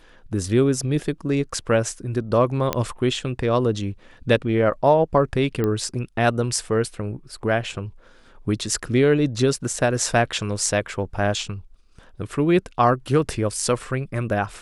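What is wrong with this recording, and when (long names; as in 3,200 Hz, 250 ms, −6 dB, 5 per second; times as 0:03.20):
0:02.73: click −7 dBFS
0:05.64: click −12 dBFS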